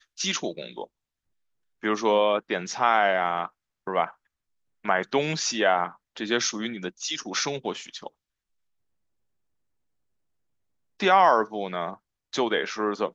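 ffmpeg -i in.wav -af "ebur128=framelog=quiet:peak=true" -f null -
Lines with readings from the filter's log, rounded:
Integrated loudness:
  I:         -25.4 LUFS
  Threshold: -36.0 LUFS
Loudness range:
  LRA:         8.6 LU
  Threshold: -47.5 LUFS
  LRA low:   -34.4 LUFS
  LRA high:  -25.8 LUFS
True peak:
  Peak:       -7.0 dBFS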